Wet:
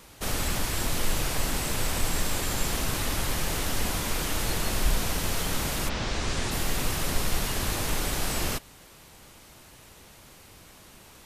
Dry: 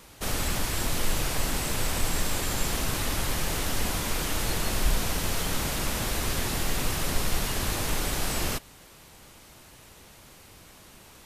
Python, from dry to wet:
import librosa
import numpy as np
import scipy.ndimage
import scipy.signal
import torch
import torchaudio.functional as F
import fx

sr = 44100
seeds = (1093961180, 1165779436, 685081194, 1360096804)

y = fx.lowpass(x, sr, hz=fx.line((5.88, 5200.0), (6.5, 9300.0)), slope=24, at=(5.88, 6.5), fade=0.02)